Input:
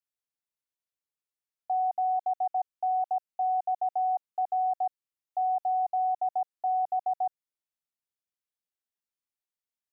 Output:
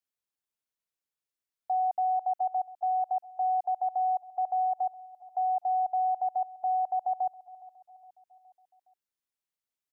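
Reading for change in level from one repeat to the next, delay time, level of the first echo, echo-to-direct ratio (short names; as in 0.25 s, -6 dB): -5.5 dB, 0.415 s, -19.5 dB, -18.0 dB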